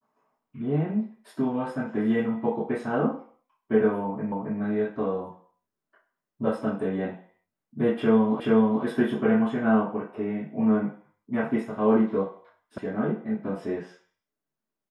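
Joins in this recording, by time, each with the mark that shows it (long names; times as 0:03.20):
0:04.32: the same again, the last 0.27 s
0:08.40: the same again, the last 0.43 s
0:12.78: cut off before it has died away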